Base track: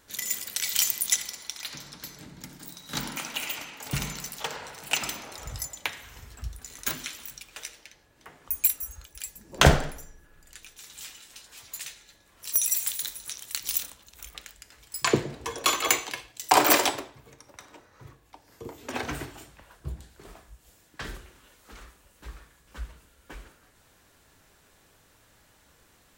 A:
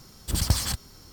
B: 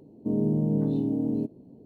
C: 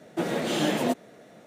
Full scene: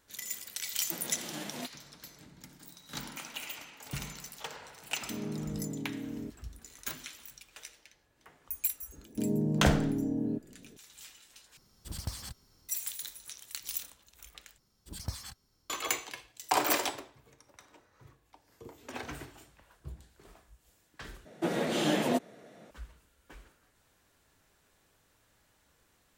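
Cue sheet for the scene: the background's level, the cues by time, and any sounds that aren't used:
base track -8.5 dB
0.73 s: add C -16 dB + formants flattened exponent 0.6
4.84 s: add B -12.5 dB
8.92 s: add B -5 dB
11.57 s: replace with A -15 dB
14.58 s: replace with A -14.5 dB + spectral noise reduction 8 dB
21.25 s: replace with C -3 dB

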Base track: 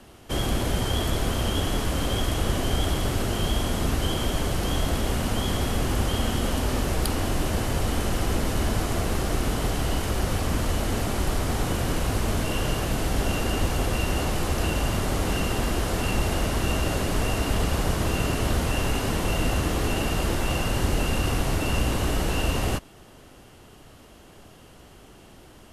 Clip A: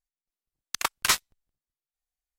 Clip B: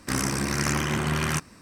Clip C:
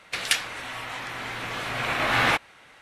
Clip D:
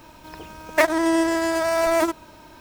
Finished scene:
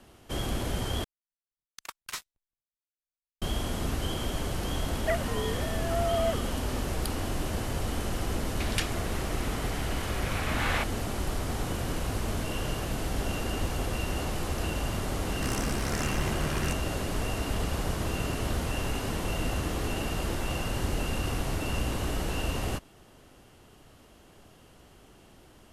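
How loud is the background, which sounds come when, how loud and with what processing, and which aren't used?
base track -6 dB
1.04 s: replace with A -15 dB
4.30 s: add D -11.5 dB + formants replaced by sine waves
8.47 s: add C -9 dB
15.34 s: add B -8.5 dB

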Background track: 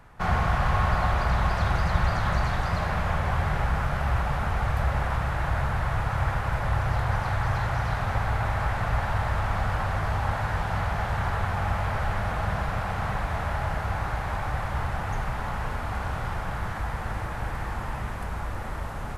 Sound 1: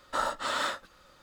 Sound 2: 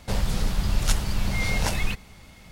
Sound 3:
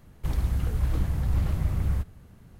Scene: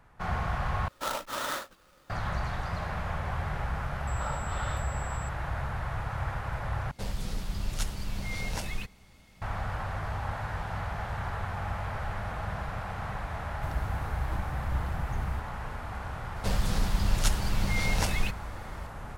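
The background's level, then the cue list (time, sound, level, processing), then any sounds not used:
background track -7 dB
0.88 s: replace with 1 -7 dB + square wave that keeps the level
4.07 s: add 1 -8.5 dB + class-D stage that switches slowly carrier 7.7 kHz
6.91 s: replace with 2 -9 dB
13.38 s: add 3 -8 dB
16.36 s: add 2 -3 dB

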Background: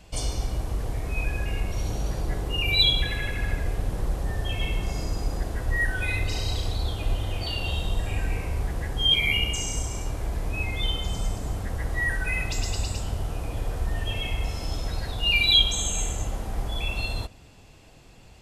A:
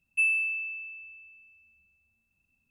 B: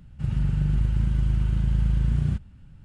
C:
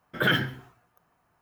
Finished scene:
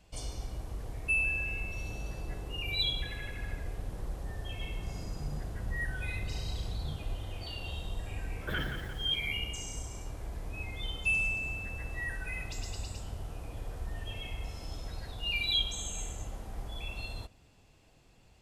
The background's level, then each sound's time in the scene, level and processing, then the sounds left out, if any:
background -11 dB
0.91 s: add A -4.5 dB
4.63 s: add B -14.5 dB + three-phase chorus
8.27 s: add C -13 dB + bit-crushed delay 174 ms, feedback 55%, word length 7-bit, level -7 dB
10.88 s: add A -4.5 dB

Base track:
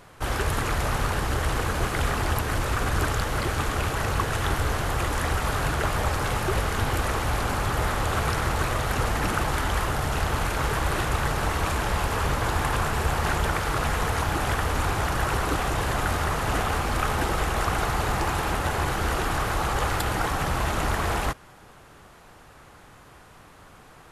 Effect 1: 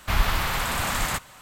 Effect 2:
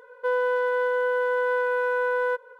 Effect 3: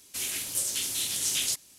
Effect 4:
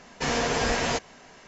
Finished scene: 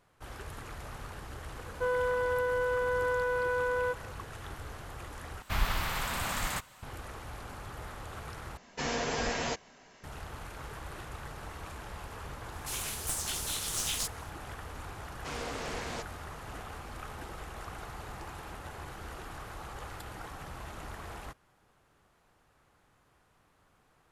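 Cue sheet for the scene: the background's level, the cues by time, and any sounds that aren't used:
base track -18 dB
1.57 s: add 2 -6 dB
5.42 s: replace with 1 -7.5 dB
8.57 s: replace with 4 -7 dB
12.52 s: add 3 -5 dB + tracing distortion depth 0.032 ms
15.04 s: add 4 -13 dB + loudspeaker Doppler distortion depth 0.67 ms

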